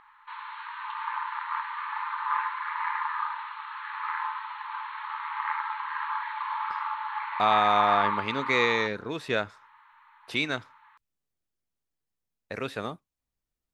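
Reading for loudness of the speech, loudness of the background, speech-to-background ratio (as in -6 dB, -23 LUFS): -27.5 LUFS, -31.5 LUFS, 4.0 dB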